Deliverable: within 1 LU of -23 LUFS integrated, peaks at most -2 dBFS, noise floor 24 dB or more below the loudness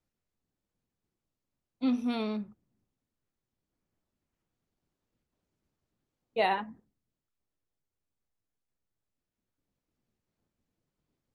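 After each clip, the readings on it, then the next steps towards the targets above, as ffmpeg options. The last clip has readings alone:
loudness -31.5 LUFS; peak level -15.0 dBFS; loudness target -23.0 LUFS
-> -af "volume=2.66"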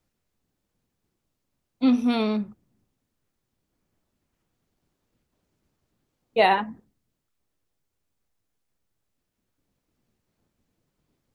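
loudness -23.0 LUFS; peak level -6.5 dBFS; noise floor -80 dBFS

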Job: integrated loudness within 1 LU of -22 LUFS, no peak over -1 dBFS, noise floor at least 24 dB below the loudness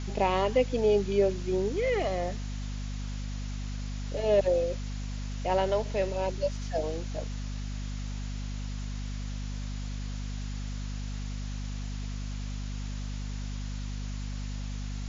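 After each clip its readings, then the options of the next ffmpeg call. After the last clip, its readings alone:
hum 50 Hz; highest harmonic 250 Hz; hum level -32 dBFS; noise floor -35 dBFS; noise floor target -56 dBFS; loudness -32.0 LUFS; peak level -13.5 dBFS; loudness target -22.0 LUFS
-> -af "bandreject=f=50:t=h:w=6,bandreject=f=100:t=h:w=6,bandreject=f=150:t=h:w=6,bandreject=f=200:t=h:w=6,bandreject=f=250:t=h:w=6"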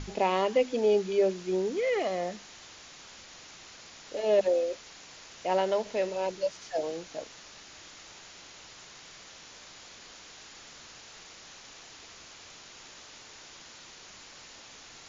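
hum not found; noise floor -50 dBFS; noise floor target -53 dBFS
-> -af "afftdn=nr=6:nf=-50"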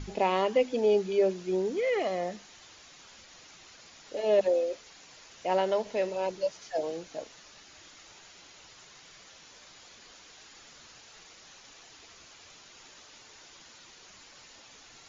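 noise floor -54 dBFS; loudness -29.0 LUFS; peak level -14.0 dBFS; loudness target -22.0 LUFS
-> -af "volume=2.24"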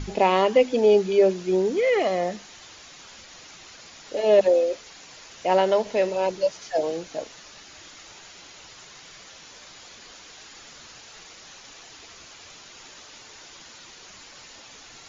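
loudness -22.0 LUFS; peak level -7.0 dBFS; noise floor -47 dBFS

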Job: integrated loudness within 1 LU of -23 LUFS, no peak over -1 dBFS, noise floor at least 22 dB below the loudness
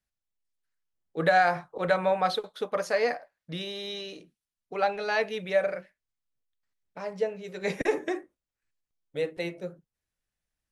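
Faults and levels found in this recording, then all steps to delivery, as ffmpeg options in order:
loudness -29.0 LUFS; peak level -11.0 dBFS; loudness target -23.0 LUFS
-> -af "volume=2"

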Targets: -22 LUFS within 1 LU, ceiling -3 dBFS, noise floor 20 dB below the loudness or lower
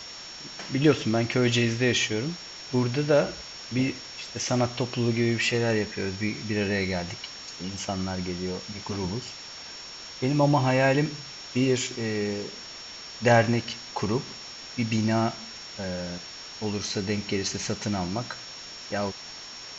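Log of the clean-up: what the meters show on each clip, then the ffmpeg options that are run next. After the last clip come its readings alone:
steady tone 5.5 kHz; tone level -41 dBFS; noise floor -42 dBFS; noise floor target -47 dBFS; loudness -27.0 LUFS; peak level -8.5 dBFS; loudness target -22.0 LUFS
-> -af "bandreject=f=5500:w=30"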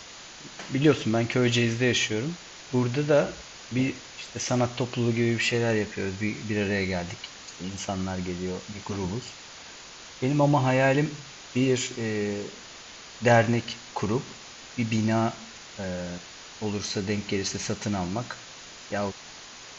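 steady tone not found; noise floor -45 dBFS; noise floor target -47 dBFS
-> -af "afftdn=nr=6:nf=-45"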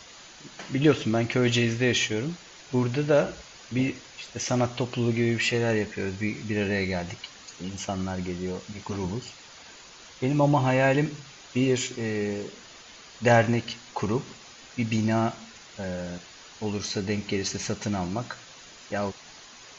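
noise floor -48 dBFS; loudness -27.0 LUFS; peak level -8.5 dBFS; loudness target -22.0 LUFS
-> -af "volume=1.78"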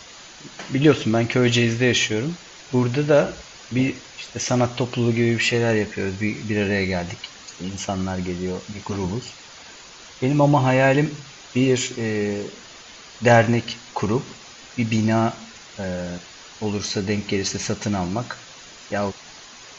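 loudness -22.0 LUFS; peak level -3.5 dBFS; noise floor -43 dBFS

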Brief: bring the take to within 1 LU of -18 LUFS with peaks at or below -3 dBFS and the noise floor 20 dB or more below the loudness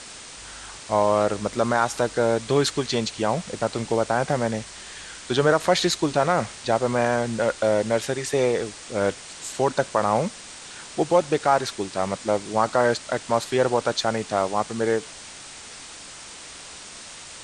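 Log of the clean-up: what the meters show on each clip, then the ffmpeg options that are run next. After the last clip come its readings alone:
noise floor -41 dBFS; noise floor target -44 dBFS; loudness -23.5 LUFS; peak level -6.0 dBFS; loudness target -18.0 LUFS
-> -af "afftdn=nr=6:nf=-41"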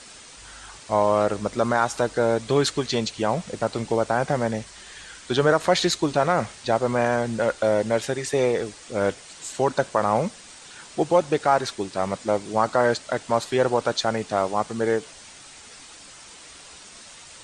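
noise floor -45 dBFS; loudness -23.5 LUFS; peak level -6.0 dBFS; loudness target -18.0 LUFS
-> -af "volume=1.88,alimiter=limit=0.708:level=0:latency=1"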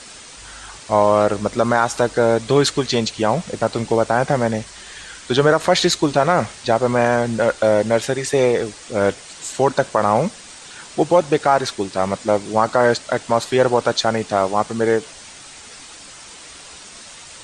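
loudness -18.5 LUFS; peak level -3.0 dBFS; noise floor -40 dBFS

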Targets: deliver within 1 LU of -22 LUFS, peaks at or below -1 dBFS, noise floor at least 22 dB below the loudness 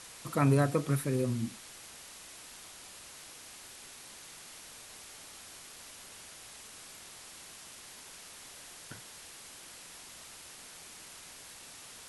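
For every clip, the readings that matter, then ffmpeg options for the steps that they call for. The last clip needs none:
noise floor -51 dBFS; noise floor target -61 dBFS; loudness -38.5 LUFS; peak level -14.0 dBFS; loudness target -22.0 LUFS
-> -af "afftdn=nr=10:nf=-51"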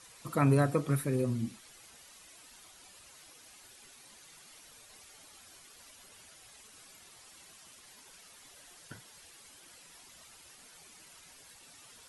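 noise floor -56 dBFS; loudness -30.0 LUFS; peak level -14.0 dBFS; loudness target -22.0 LUFS
-> -af "volume=2.51"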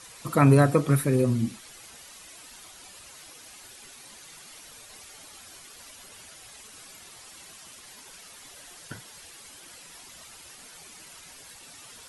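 loudness -22.0 LUFS; peak level -6.0 dBFS; noise floor -48 dBFS

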